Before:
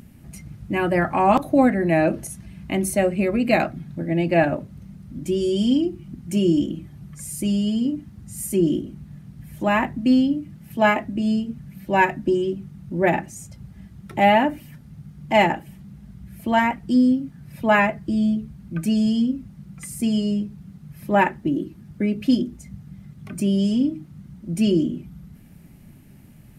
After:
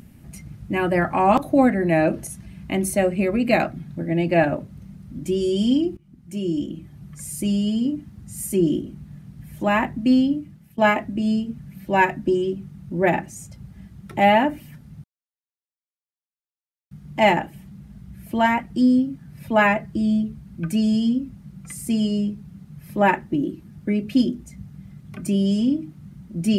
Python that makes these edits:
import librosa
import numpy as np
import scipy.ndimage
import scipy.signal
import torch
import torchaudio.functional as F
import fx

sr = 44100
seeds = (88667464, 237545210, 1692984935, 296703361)

y = fx.edit(x, sr, fx.fade_in_from(start_s=5.97, length_s=1.21, floor_db=-18.0),
    fx.fade_out_to(start_s=10.34, length_s=0.44, floor_db=-17.0),
    fx.insert_silence(at_s=15.04, length_s=1.87), tone=tone)